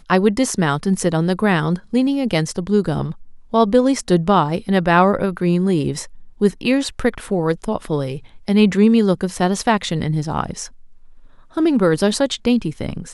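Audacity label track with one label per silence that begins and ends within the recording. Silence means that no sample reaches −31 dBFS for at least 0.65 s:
10.680000	11.570000	silence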